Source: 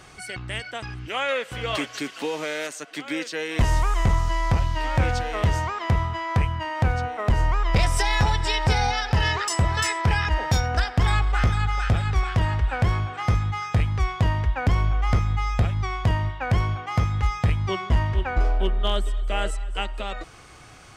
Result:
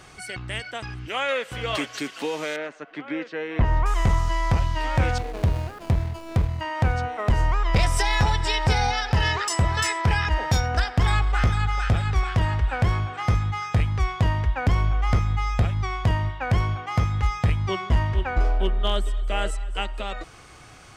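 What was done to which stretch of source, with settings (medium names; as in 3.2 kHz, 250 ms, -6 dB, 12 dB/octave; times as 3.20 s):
2.56–3.86 s: low-pass 1.9 kHz
5.18–6.61 s: median filter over 41 samples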